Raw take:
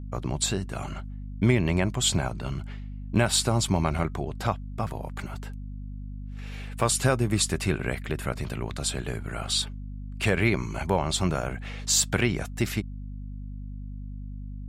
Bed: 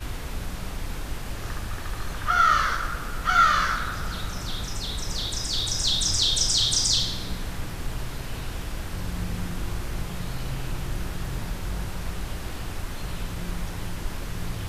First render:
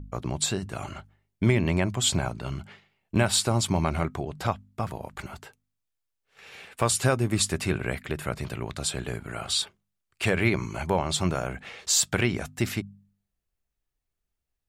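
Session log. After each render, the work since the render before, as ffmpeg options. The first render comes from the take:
-af "bandreject=f=50:t=h:w=4,bandreject=f=100:t=h:w=4,bandreject=f=150:t=h:w=4,bandreject=f=200:t=h:w=4,bandreject=f=250:t=h:w=4"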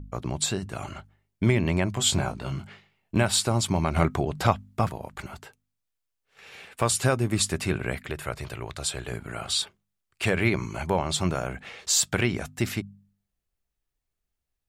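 -filter_complex "[0:a]asettb=1/sr,asplit=3[s0][s1][s2];[s0]atrim=end=1.944[s3];[s1]atrim=start=1.94:end=3.18,asetpts=PTS-STARTPTS,afade=t=in:d=0.004:c=qsin,afade=t=out:st=1.236:d=0.004:c=qsin,asplit=2[s4][s5];[s5]adelay=21,volume=0.531[s6];[s4][s6]amix=inputs=2:normalize=0,atrim=end_sample=54684[s7];[s2]atrim=start=3.176[s8];[s3][s7]acrossfade=d=0.004:c1=hsin:c2=qsin[s9];[s9][s8]acrossfade=d=0.004:c1=qsin:c2=hsin,asettb=1/sr,asplit=3[s10][s11][s12];[s10]atrim=end=3.964[s13];[s11]atrim=start=3.96:end=4.89,asetpts=PTS-STARTPTS,afade=t=in:d=0.004:c=qsin,afade=t=out:st=0.926:d=0.004:c=qsin,acontrast=45[s14];[s12]atrim=start=4.886[s15];[s13][s14]acrossfade=d=0.004:c1=hsin:c2=qsin[s16];[s16][s15]acrossfade=d=0.004:c1=qsin:c2=hsin,asettb=1/sr,asplit=3[s17][s18][s19];[s17]atrim=end=8.104[s20];[s18]atrim=start=8.1:end=9.12,asetpts=PTS-STARTPTS,afade=t=in:d=0.004:c=qsin,afade=t=out:st=1.016:d=0.004:c=qsin,equalizer=f=210:w=1.5:g=-10[s21];[s19]atrim=start=9.116[s22];[s20][s21]acrossfade=d=0.004:c1=hsin:c2=qsin[s23];[s23][s22]acrossfade=d=0.004:c1=qsin:c2=hsin"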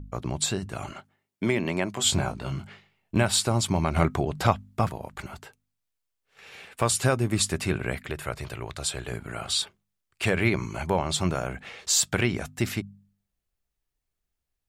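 -filter_complex "[0:a]asettb=1/sr,asplit=3[s0][s1][s2];[s0]atrim=end=0.914[s3];[s1]atrim=start=0.91:end=2.05,asetpts=PTS-STARTPTS,afade=t=in:d=0.004:c=qsin,afade=t=out:st=1.136:d=0.004:c=qsin,highpass=210[s4];[s2]atrim=start=2.046[s5];[s3][s4]acrossfade=d=0.004:c1=hsin:c2=qsin[s6];[s6][s5]acrossfade=d=0.004:c1=qsin:c2=hsin"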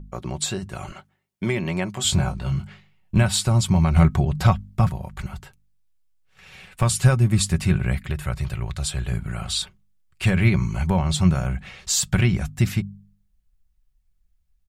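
-af "aecho=1:1:5.4:0.42,asubboost=boost=8:cutoff=130"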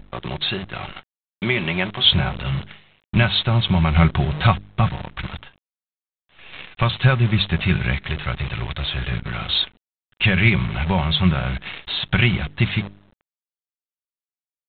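-af "crystalizer=i=7.5:c=0,aresample=8000,acrusher=bits=6:dc=4:mix=0:aa=0.000001,aresample=44100"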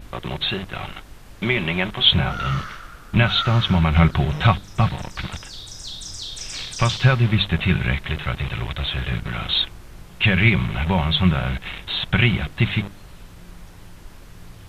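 -filter_complex "[1:a]volume=0.299[s0];[0:a][s0]amix=inputs=2:normalize=0"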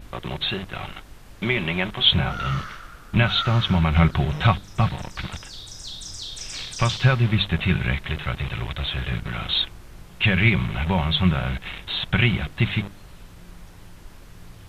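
-af "volume=0.794"

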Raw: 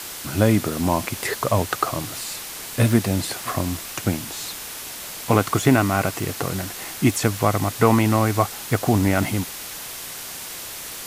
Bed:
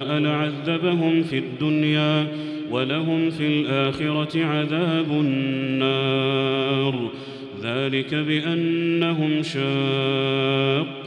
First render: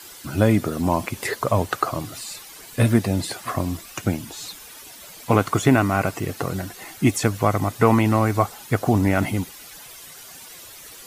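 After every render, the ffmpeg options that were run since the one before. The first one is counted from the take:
-af "afftdn=nr=12:nf=-35"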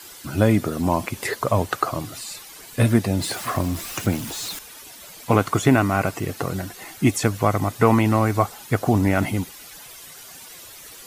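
-filter_complex "[0:a]asettb=1/sr,asplit=3[s0][s1][s2];[s0]atrim=end=3.214[s3];[s1]atrim=start=3.21:end=4.59,asetpts=PTS-STARTPTS,afade=t=in:d=0.004:c=qsin,afade=t=out:st=1.376:d=0.004:c=qsin,aeval=exprs='val(0)+0.5*0.0282*sgn(val(0))':c=same[s4];[s2]atrim=start=4.586[s5];[s3][s4]acrossfade=d=0.004:c1=hsin:c2=qsin[s6];[s6][s5]acrossfade=d=0.004:c1=qsin:c2=hsin"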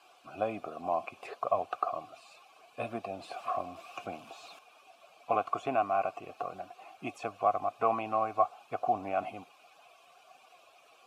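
-filter_complex "[0:a]asplit=3[s0][s1][s2];[s0]bandpass=f=730:t=q:w=8,volume=1[s3];[s1]bandpass=f=1090:t=q:w=8,volume=0.501[s4];[s2]bandpass=f=2440:t=q:w=8,volume=0.355[s5];[s3][s4][s5]amix=inputs=3:normalize=0"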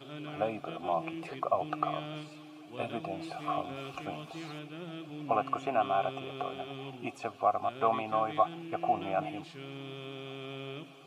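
-filter_complex "[1:a]volume=0.0841[s0];[0:a][s0]amix=inputs=2:normalize=0"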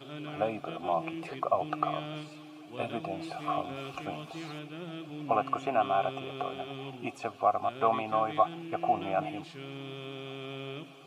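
-af "volume=1.19"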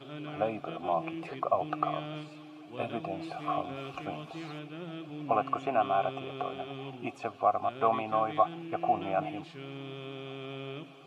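-af "highshelf=f=5700:g=-9.5"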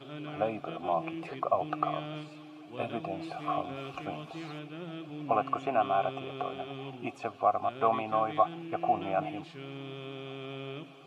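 -af anull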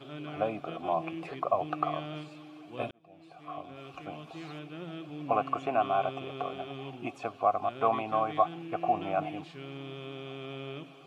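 -filter_complex "[0:a]asplit=2[s0][s1];[s0]atrim=end=2.91,asetpts=PTS-STARTPTS,afade=t=out:st=2.906:d=0.004:c=hsin[s2];[s1]atrim=start=2.91,asetpts=PTS-STARTPTS,afade=t=in:d=1.84[s3];[s2][s3]concat=n=2:v=0:a=1"

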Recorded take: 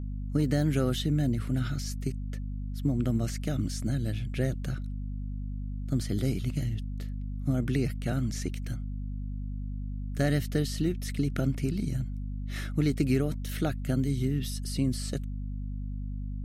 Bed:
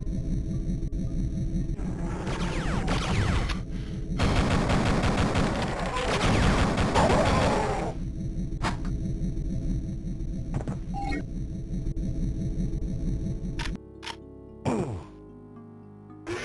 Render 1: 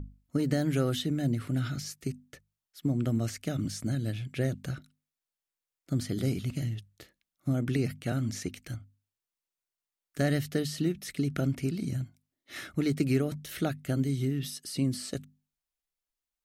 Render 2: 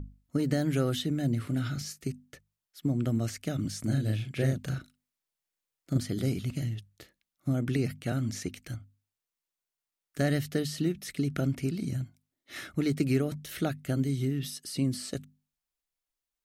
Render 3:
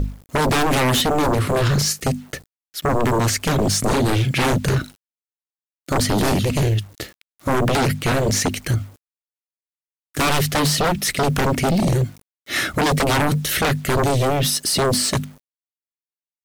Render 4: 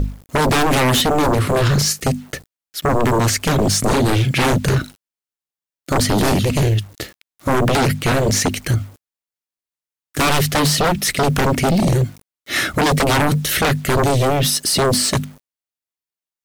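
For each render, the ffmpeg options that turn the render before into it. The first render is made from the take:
-af "bandreject=f=50:t=h:w=6,bandreject=f=100:t=h:w=6,bandreject=f=150:t=h:w=6,bandreject=f=200:t=h:w=6,bandreject=f=250:t=h:w=6"
-filter_complex "[0:a]asettb=1/sr,asplit=3[s0][s1][s2];[s0]atrim=end=1.304[s3];[s1]atrim=start=1.3:end=2.05,asetpts=PTS-STARTPTS,afade=t=in:d=0.004:c=qsin,afade=t=out:st=0.746:d=0.004:c=qsin,asplit=2[s4][s5];[s5]adelay=35,volume=0.251[s6];[s4][s6]amix=inputs=2:normalize=0,atrim=end_sample=33075[s7];[s2]atrim=start=2.046[s8];[s3][s7]acrossfade=d=0.004:c1=hsin:c2=qsin[s9];[s9][s8]acrossfade=d=0.004:c1=qsin:c2=hsin,asettb=1/sr,asplit=3[s10][s11][s12];[s10]atrim=end=3.804[s13];[s11]atrim=start=3.8:end=5.98,asetpts=PTS-STARTPTS,afade=t=in:d=0.004:c=qsin,afade=t=out:st=2.176:d=0.004:c=qsin,asplit=2[s14][s15];[s15]adelay=37,volume=0.75[s16];[s14][s16]amix=inputs=2:normalize=0,atrim=end_sample=96138[s17];[s12]atrim=start=5.976[s18];[s13][s17]acrossfade=d=0.004:c1=hsin:c2=qsin[s19];[s19][s18]acrossfade=d=0.004:c1=qsin:c2=hsin"
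-af "aeval=exprs='0.188*sin(PI/2*7.08*val(0)/0.188)':c=same,acrusher=bits=7:mix=0:aa=0.000001"
-af "volume=1.33"

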